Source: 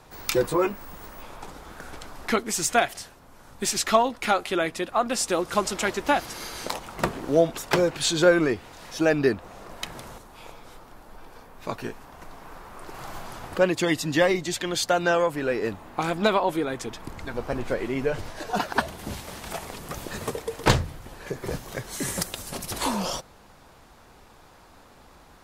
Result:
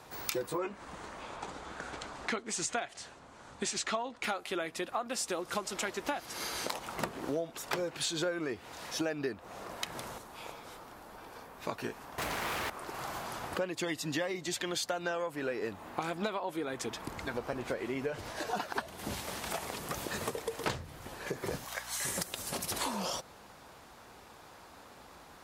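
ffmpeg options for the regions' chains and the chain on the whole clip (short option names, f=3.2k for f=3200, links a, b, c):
-filter_complex "[0:a]asettb=1/sr,asplit=3[a][b][c];[a]atrim=end=0.584[d];[b]atrim=start=0.58:end=4.24,asetpts=PTS-STARTPTS,afade=t=in:d=0.004:c=qsin,afade=t=out:st=3.656:d=0.004:c=qsin,lowpass=f=8.2k:w=0.5412,lowpass=f=8.2k:w=1.3066,equalizer=f=5.3k:w=5.1:g=-4[e];[c]atrim=start=4.236[f];[d][e]acrossfade=d=0.004:c1=hsin:c2=qsin[g];[g][f]acrossfade=d=0.004:c1=qsin:c2=hsin,asettb=1/sr,asplit=3[h][i][j];[h]atrim=end=12.184[k];[i]atrim=start=12.18:end=12.7,asetpts=PTS-STARTPTS,afade=t=in:d=0.004:c=qsin,afade=t=out:st=0.516:d=0.004:c=qsin,asubboost=boost=9:cutoff=60,aeval=exprs='0.0355*sin(PI/2*5.62*val(0)/0.0355)':c=same[l];[j]atrim=start=12.696[m];[k][l]acrossfade=d=0.004:c1=hsin:c2=qsin[n];[n][m]acrossfade=d=0.004:c1=qsin:c2=hsin,asettb=1/sr,asplit=3[o][p][q];[o]atrim=end=21.654[r];[p]atrim=start=21.65:end=22.05,asetpts=PTS-STARTPTS,afade=t=in:d=0.004:c=qsin,afade=t=out:st=0.396:d=0.004:c=qsin,highpass=f=710:w=0.5412,highpass=f=710:w=1.3066,aeval=exprs='val(0)+0.00282*(sin(2*PI*60*n/s)+sin(2*PI*2*60*n/s)/2+sin(2*PI*3*60*n/s)/3+sin(2*PI*4*60*n/s)/4+sin(2*PI*5*60*n/s)/5)':c=same[s];[q]atrim=start=22.046[t];[r][s]acrossfade=d=0.004:c1=hsin:c2=qsin[u];[u][t]acrossfade=d=0.004:c1=qsin:c2=hsin,highpass=50,lowshelf=f=220:g=-6,acompressor=threshold=-32dB:ratio=6"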